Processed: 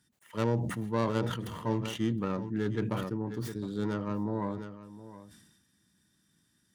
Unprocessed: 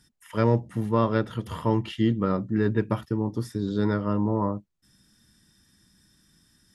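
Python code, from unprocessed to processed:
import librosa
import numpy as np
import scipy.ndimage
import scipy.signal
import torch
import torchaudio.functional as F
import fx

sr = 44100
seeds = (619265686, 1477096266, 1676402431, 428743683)

y = fx.tracing_dist(x, sr, depth_ms=0.21)
y = scipy.signal.sosfilt(scipy.signal.butter(2, 92.0, 'highpass', fs=sr, output='sos'), y)
y = fx.notch(y, sr, hz=5200.0, q=13.0)
y = y + 10.0 ** (-15.5 / 20.0) * np.pad(y, (int(714 * sr / 1000.0), 0))[:len(y)]
y = fx.sustainer(y, sr, db_per_s=49.0)
y = F.gain(torch.from_numpy(y), -8.0).numpy()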